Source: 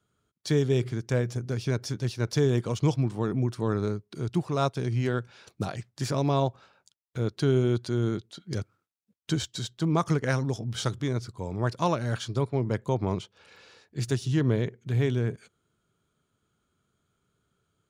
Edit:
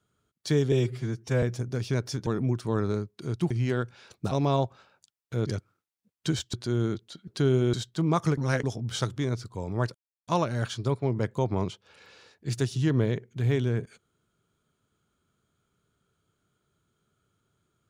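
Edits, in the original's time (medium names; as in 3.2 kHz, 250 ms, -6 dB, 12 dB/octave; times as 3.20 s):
0.72–1.19 s: stretch 1.5×
2.03–3.20 s: delete
4.44–4.87 s: delete
5.68–6.15 s: delete
7.30–7.76 s: swap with 8.50–9.57 s
10.21–10.47 s: reverse
11.78 s: insert silence 0.33 s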